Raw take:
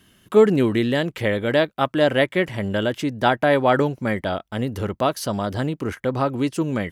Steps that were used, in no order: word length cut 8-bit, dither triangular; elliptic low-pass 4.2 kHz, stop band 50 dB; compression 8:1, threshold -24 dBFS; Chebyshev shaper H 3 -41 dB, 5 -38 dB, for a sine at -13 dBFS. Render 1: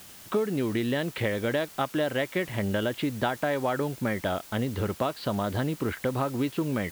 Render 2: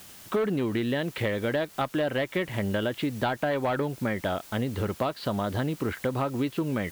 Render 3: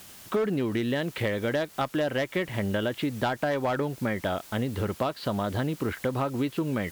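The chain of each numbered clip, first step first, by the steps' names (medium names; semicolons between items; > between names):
elliptic low-pass > compression > Chebyshev shaper > word length cut; Chebyshev shaper > elliptic low-pass > word length cut > compression; elliptic low-pass > word length cut > Chebyshev shaper > compression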